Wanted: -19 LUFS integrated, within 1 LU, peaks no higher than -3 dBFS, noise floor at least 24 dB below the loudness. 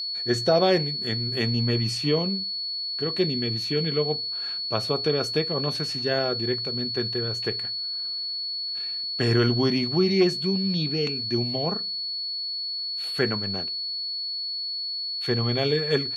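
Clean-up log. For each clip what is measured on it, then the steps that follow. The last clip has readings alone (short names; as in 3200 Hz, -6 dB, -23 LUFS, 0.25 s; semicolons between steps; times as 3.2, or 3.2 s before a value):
steady tone 4400 Hz; tone level -28 dBFS; loudness -25.0 LUFS; peak -8.5 dBFS; loudness target -19.0 LUFS
-> notch 4400 Hz, Q 30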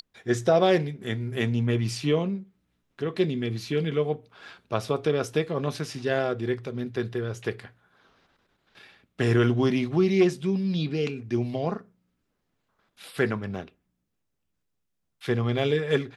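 steady tone none; loudness -26.5 LUFS; peak -8.5 dBFS; loudness target -19.0 LUFS
-> gain +7.5 dB; limiter -3 dBFS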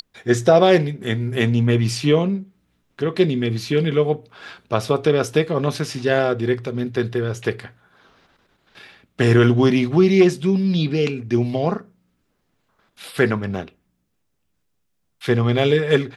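loudness -19.5 LUFS; peak -3.0 dBFS; noise floor -70 dBFS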